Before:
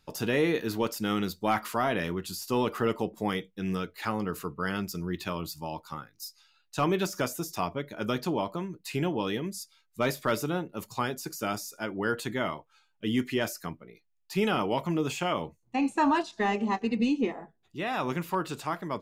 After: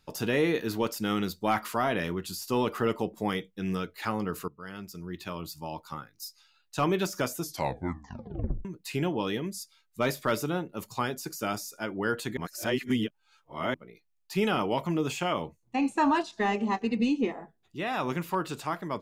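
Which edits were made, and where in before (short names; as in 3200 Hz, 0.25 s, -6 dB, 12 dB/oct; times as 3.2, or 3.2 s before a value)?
4.48–5.91 fade in, from -15.5 dB
7.41 tape stop 1.24 s
12.37–13.74 reverse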